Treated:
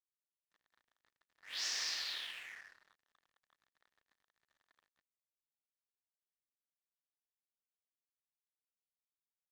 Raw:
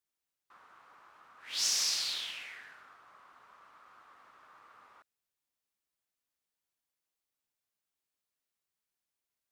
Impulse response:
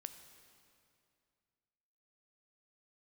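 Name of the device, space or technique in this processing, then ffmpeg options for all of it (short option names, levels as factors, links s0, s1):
pocket radio on a weak battery: -af "highpass=310,lowpass=4500,aeval=exprs='sgn(val(0))*max(abs(val(0))-0.00237,0)':c=same,equalizer=f=1800:t=o:w=0.23:g=10,volume=0.708"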